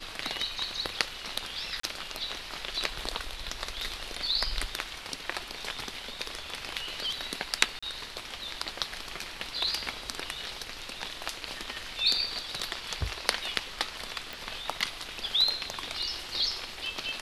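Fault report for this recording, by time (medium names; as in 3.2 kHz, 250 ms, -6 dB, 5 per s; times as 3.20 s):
1.80–1.83 s: dropout 34 ms
7.79–7.83 s: dropout 35 ms
14.33 s: pop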